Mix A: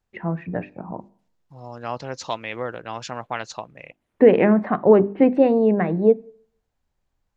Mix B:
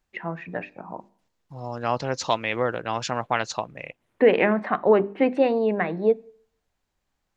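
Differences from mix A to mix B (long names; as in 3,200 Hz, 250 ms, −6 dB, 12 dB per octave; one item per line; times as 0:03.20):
first voice: add spectral tilt +3.5 dB per octave
second voice +4.5 dB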